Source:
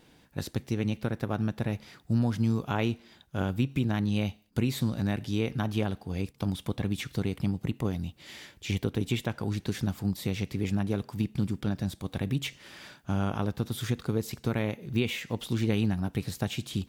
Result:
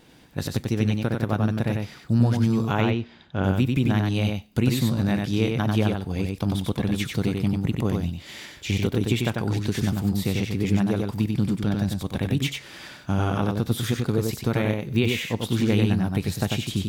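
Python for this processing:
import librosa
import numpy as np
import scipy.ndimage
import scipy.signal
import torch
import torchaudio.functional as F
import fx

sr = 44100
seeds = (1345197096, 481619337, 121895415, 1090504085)

y = fx.lowpass(x, sr, hz=3700.0, slope=12, at=(2.81, 3.44))
y = y + 10.0 ** (-3.5 / 20.0) * np.pad(y, (int(94 * sr / 1000.0), 0))[:len(y)]
y = F.gain(torch.from_numpy(y), 5.0).numpy()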